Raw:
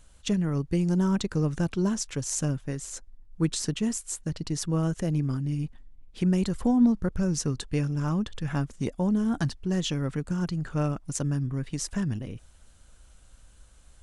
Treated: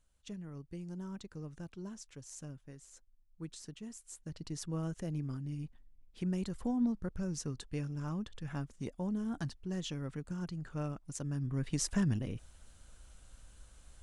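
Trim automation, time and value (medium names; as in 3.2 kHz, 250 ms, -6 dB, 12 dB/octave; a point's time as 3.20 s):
3.90 s -19 dB
4.44 s -11 dB
11.25 s -11 dB
11.69 s -2 dB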